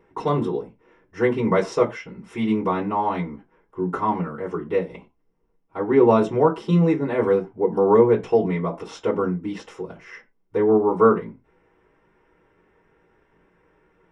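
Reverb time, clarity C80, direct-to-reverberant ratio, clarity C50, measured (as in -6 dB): not exponential, 22.5 dB, -5.0 dB, 16.5 dB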